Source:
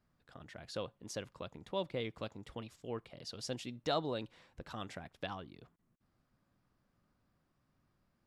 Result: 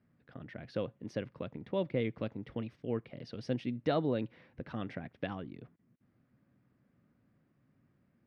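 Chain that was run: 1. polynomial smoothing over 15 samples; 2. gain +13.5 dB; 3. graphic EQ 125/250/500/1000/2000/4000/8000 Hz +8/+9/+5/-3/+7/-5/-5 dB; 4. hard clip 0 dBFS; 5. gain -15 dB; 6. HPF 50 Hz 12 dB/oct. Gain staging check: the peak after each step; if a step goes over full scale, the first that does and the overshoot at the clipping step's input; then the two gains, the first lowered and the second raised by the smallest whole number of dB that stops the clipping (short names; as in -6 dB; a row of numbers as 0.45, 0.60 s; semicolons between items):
-21.5, -8.0, -2.5, -2.5, -17.5, -18.5 dBFS; no overload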